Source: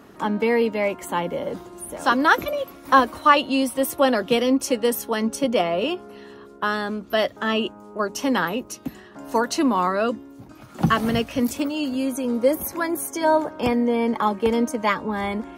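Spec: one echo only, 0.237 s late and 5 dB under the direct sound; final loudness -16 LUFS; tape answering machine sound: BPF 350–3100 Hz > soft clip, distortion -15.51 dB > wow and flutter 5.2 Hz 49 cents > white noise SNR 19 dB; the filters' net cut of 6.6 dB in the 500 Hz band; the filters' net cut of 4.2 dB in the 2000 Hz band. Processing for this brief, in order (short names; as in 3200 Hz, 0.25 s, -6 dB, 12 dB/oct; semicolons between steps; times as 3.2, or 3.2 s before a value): BPF 350–3100 Hz; bell 500 Hz -6.5 dB; bell 2000 Hz -4.5 dB; echo 0.237 s -5 dB; soft clip -14 dBFS; wow and flutter 5.2 Hz 49 cents; white noise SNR 19 dB; gain +11.5 dB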